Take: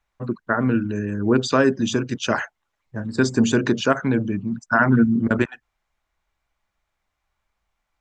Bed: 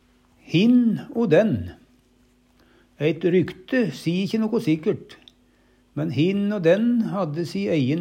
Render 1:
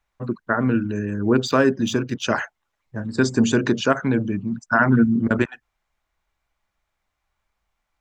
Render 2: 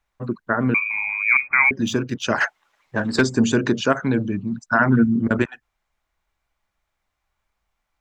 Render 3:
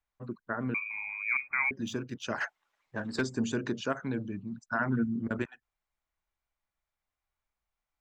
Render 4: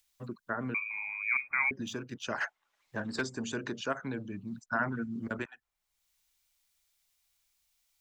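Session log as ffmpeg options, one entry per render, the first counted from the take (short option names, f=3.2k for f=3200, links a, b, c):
-filter_complex "[0:a]asplit=3[a][b][c];[a]afade=t=out:st=1.45:d=0.02[d];[b]adynamicsmooth=sensitivity=7:basefreq=6k,afade=t=in:st=1.45:d=0.02,afade=t=out:st=2.22:d=0.02[e];[c]afade=t=in:st=2.22:d=0.02[f];[d][e][f]amix=inputs=3:normalize=0"
-filter_complex "[0:a]asettb=1/sr,asplit=3[a][b][c];[a]atrim=end=0.744[d];[b]atrim=start=0.74:end=1.71,asetpts=PTS-STARTPTS,afade=t=in:d=0.004:c=qsin,afade=t=out:st=0.966:d=0.004:c=qsin,lowpass=f=2.2k:t=q:w=0.5098,lowpass=f=2.2k:t=q:w=0.6013,lowpass=f=2.2k:t=q:w=0.9,lowpass=f=2.2k:t=q:w=2.563,afreqshift=-2600[e];[c]atrim=start=1.706[f];[d][e]acrossfade=d=0.004:c1=hsin:c2=qsin[g];[g][f]acrossfade=d=0.004:c1=qsin:c2=hsin,asplit=3[h][i][j];[h]afade=t=out:st=2.4:d=0.02[k];[i]asplit=2[l][m];[m]highpass=f=720:p=1,volume=21dB,asoftclip=type=tanh:threshold=-6.5dB[n];[l][n]amix=inputs=2:normalize=0,lowpass=f=4.5k:p=1,volume=-6dB,afade=t=in:st=2.4:d=0.02,afade=t=out:st=3.2:d=0.02[o];[j]afade=t=in:st=3.2:d=0.02[p];[k][o][p]amix=inputs=3:normalize=0,asettb=1/sr,asplit=3[q][r][s];[q]atrim=end=4.064[t];[r]atrim=start=4.06:end=4.81,asetpts=PTS-STARTPTS,afade=t=in:d=0.004:c=qsin,afade=t=out:st=0.746:d=0.004:c=qsin,equalizer=f=4k:t=o:w=0.26:g=7[u];[s]atrim=start=4.806[v];[t][u]acrossfade=d=0.004:c1=hsin:c2=qsin[w];[w][v]acrossfade=d=0.004:c1=qsin:c2=hsin"
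-af "volume=-13dB"
-filter_complex "[0:a]acrossover=split=500|3000[a][b][c];[a]alimiter=level_in=6dB:limit=-24dB:level=0:latency=1:release=461,volume=-6dB[d];[c]acompressor=mode=upward:threshold=-58dB:ratio=2.5[e];[d][b][e]amix=inputs=3:normalize=0"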